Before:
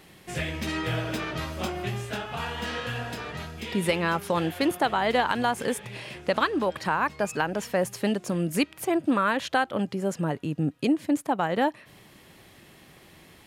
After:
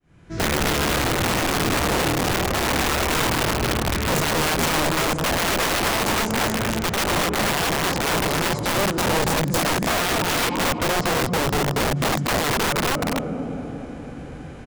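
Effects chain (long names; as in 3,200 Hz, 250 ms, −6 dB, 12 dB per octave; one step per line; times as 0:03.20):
fade in at the beginning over 0.61 s
parametric band 12,000 Hz −4.5 dB 0.23 octaves
convolution reverb RT60 4.4 s, pre-delay 227 ms, DRR 13.5 dB
wrong playback speed 48 kHz file played as 44.1 kHz
spectral tilt −2.5 dB per octave
brickwall limiter −14.5 dBFS, peak gain reduction 6 dB
repeating echo 236 ms, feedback 39%, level −4 dB
formants moved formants −4 semitones
downward compressor 6 to 1, threshold −23 dBFS, peak gain reduction 7 dB
wrap-around overflow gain 24.5 dB
level +8 dB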